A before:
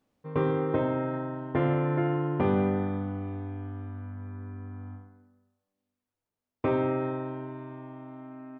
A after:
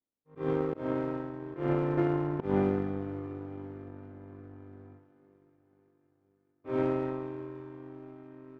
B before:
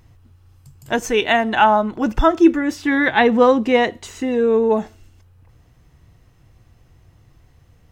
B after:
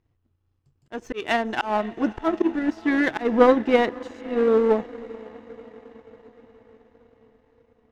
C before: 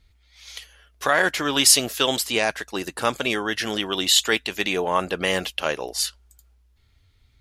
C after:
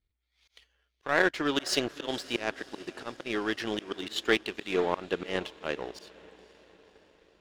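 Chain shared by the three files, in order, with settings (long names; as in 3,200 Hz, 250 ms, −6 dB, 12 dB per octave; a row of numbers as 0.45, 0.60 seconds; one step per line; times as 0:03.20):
volume swells 152 ms
low-pass filter 4,500 Hz 12 dB per octave
parametric band 350 Hz +7 dB 0.89 octaves
on a send: feedback delay with all-pass diffusion 535 ms, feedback 67%, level −15 dB
on the sum: power curve on the samples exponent 1.4
level −2.5 dB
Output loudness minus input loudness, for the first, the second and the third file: −2.5, −5.5, −9.5 LU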